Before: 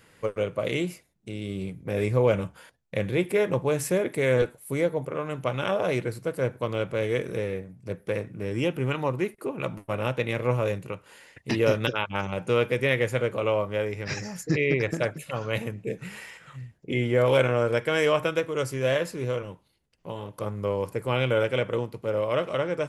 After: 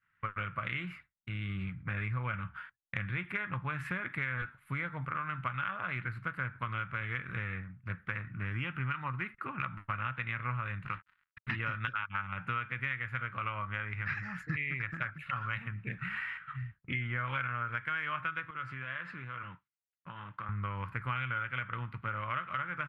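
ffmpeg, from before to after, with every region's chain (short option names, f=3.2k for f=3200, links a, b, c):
-filter_complex "[0:a]asettb=1/sr,asplit=3[a][b][c];[a]atrim=end=10.854[d];[b]atrim=start=10.85:end=11.52,asetpts=PTS-STARTPTS,afade=t=in:d=0.004:c=qsin,afade=t=out:st=0.666:d=0.004:c=qsin,highpass=63,bandreject=f=94.98:t=h:w=4,bandreject=f=189.96:t=h:w=4,bandreject=f=284.94:t=h:w=4,bandreject=f=379.92:t=h:w=4,bandreject=f=474.9:t=h:w=4,bandreject=f=569.88:t=h:w=4,bandreject=f=664.86:t=h:w=4,bandreject=f=759.84:t=h:w=4,acrusher=bits=6:mix=0:aa=0.5[e];[c]atrim=start=11.516[f];[d][e]acrossfade=d=0.004:c1=hsin:c2=qsin[g];[g][f]acrossfade=d=0.004:c1=qsin:c2=hsin,asettb=1/sr,asplit=3[h][i][j];[h]atrim=end=18.504[k];[i]atrim=start=18.5:end=20.49,asetpts=PTS-STARTPTS,afade=t=in:d=0.004:c=qsin,afade=t=out:st=1.986:d=0.004:c=qsin,acompressor=threshold=-34dB:ratio=10:attack=3.2:release=140:knee=1:detection=peak,highpass=140,lowpass=5.8k[l];[j]atrim=start=20.486[m];[k][l]acrossfade=d=0.004:c1=hsin:c2=qsin[n];[n][m]acrossfade=d=0.004:c1=qsin:c2=hsin,agate=range=-33dB:threshold=-43dB:ratio=3:detection=peak,firequalizer=gain_entry='entry(110,0);entry(440,-24);entry(1300,11);entry(5800,-27)':delay=0.05:min_phase=1,acompressor=threshold=-34dB:ratio=6,volume=1.5dB"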